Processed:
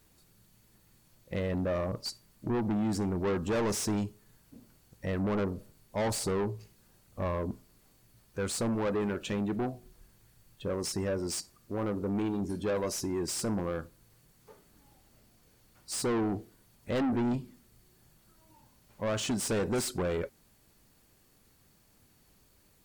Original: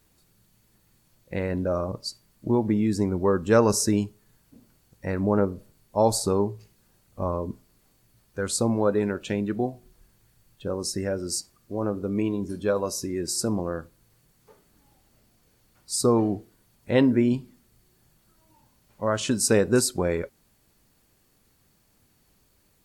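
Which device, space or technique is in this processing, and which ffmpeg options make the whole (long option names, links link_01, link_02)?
saturation between pre-emphasis and de-emphasis: -af "highshelf=frequency=5700:gain=9,asoftclip=type=tanh:threshold=-26.5dB,highshelf=frequency=5700:gain=-9"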